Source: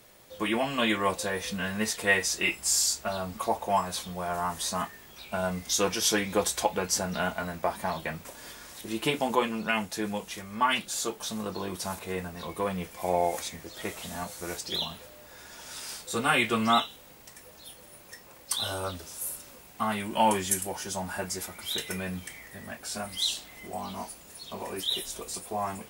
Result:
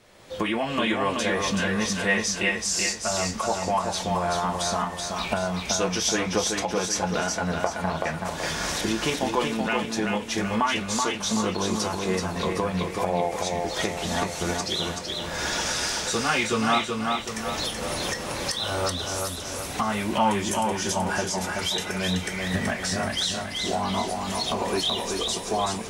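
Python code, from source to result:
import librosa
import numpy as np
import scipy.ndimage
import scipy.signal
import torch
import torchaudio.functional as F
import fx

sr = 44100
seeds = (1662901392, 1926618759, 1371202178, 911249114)

p1 = fx.recorder_agc(x, sr, target_db=-17.5, rise_db_per_s=30.0, max_gain_db=30)
p2 = p1 + fx.echo_feedback(p1, sr, ms=379, feedback_pct=46, wet_db=-4, dry=0)
p3 = fx.dynamic_eq(p2, sr, hz=6000.0, q=3.0, threshold_db=-43.0, ratio=4.0, max_db=5)
p4 = 10.0 ** (-17.0 / 20.0) * np.tanh(p3 / 10.0 ** (-17.0 / 20.0))
p5 = p3 + F.gain(torch.from_numpy(p4), -10.0).numpy()
p6 = fx.air_absorb(p5, sr, metres=59.0)
p7 = fx.end_taper(p6, sr, db_per_s=180.0)
y = F.gain(torch.from_numpy(p7), -1.5).numpy()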